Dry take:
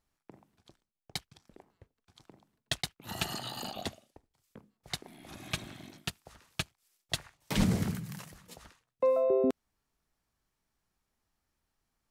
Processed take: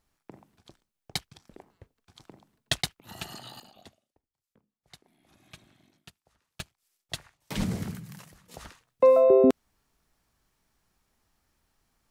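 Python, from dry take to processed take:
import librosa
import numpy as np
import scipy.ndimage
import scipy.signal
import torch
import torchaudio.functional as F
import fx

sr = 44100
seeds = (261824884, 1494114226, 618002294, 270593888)

y = fx.gain(x, sr, db=fx.steps((0.0, 5.5), (3.0, -5.0), (3.6, -15.0), (6.6, -2.5), (8.54, 8.5)))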